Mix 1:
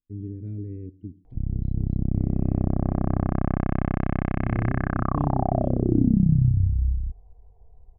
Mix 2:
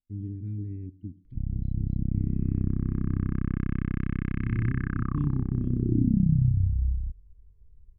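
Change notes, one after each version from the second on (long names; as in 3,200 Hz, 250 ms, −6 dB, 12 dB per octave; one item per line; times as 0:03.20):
background −3.0 dB
master: add Butterworth band-reject 670 Hz, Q 0.57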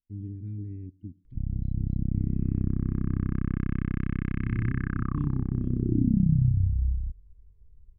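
speech: send −7.5 dB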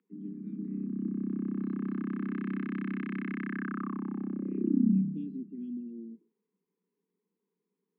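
background: entry −1.25 s
master: add Butterworth high-pass 180 Hz 96 dB per octave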